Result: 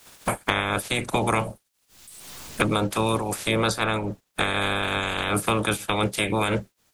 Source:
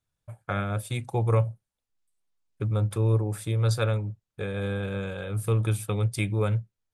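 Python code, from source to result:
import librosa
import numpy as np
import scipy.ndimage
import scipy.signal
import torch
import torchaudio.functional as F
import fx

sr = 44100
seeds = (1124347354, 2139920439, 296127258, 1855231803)

y = fx.spec_clip(x, sr, under_db=28)
y = fx.band_squash(y, sr, depth_pct=100)
y = y * 10.0 ** (1.5 / 20.0)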